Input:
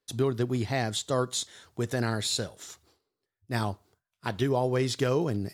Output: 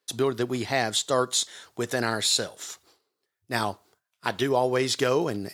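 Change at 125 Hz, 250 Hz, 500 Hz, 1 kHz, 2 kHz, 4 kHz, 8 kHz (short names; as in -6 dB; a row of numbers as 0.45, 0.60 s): -5.5, +0.5, +3.5, +5.5, +6.0, +6.5, +6.5 dB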